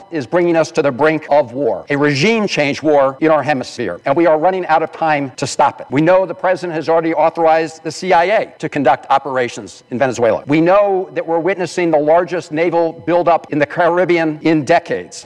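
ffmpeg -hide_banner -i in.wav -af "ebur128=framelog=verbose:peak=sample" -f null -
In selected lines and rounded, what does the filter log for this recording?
Integrated loudness:
  I:         -14.7 LUFS
  Threshold: -24.7 LUFS
Loudness range:
  LRA:         1.1 LU
  Threshold: -34.7 LUFS
  LRA low:   -15.3 LUFS
  LRA high:  -14.2 LUFS
Sample peak:
  Peak:       -2.9 dBFS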